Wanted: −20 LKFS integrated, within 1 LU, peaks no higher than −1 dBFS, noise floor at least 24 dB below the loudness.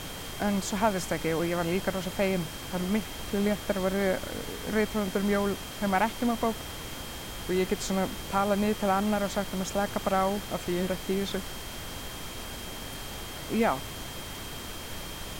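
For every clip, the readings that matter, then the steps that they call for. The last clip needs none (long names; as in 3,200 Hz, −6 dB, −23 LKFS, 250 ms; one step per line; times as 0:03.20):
interfering tone 3,200 Hz; level of the tone −46 dBFS; background noise floor −40 dBFS; target noise floor −54 dBFS; integrated loudness −30.0 LKFS; sample peak −13.0 dBFS; target loudness −20.0 LKFS
→ notch filter 3,200 Hz, Q 30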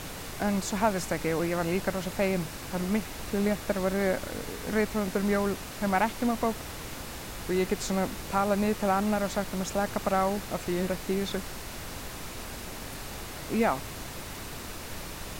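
interfering tone none found; background noise floor −40 dBFS; target noise floor −55 dBFS
→ noise reduction from a noise print 15 dB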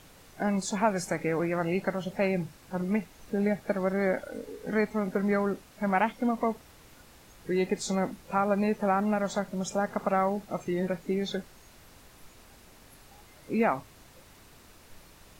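background noise floor −55 dBFS; integrated loudness −29.5 LKFS; sample peak −13.0 dBFS; target loudness −20.0 LKFS
→ level +9.5 dB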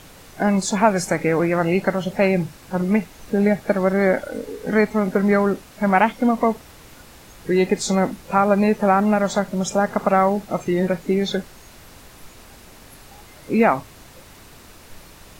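integrated loudness −20.0 LKFS; sample peak −3.5 dBFS; background noise floor −45 dBFS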